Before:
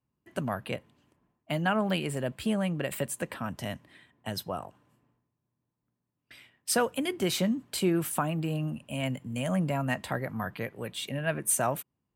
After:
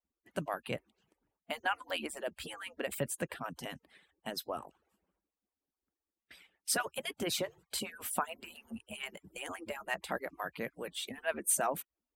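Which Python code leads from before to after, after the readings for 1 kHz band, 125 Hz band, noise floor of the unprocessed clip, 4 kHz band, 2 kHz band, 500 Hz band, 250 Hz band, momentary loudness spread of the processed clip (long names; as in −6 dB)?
−4.5 dB, −16.5 dB, −84 dBFS, −3.5 dB, −3.5 dB, −7.0 dB, −14.0 dB, 11 LU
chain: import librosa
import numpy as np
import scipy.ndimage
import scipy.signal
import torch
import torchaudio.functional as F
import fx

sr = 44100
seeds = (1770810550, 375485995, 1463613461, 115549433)

y = fx.hpss_only(x, sr, part='percussive')
y = F.gain(torch.from_numpy(y), -3.0).numpy()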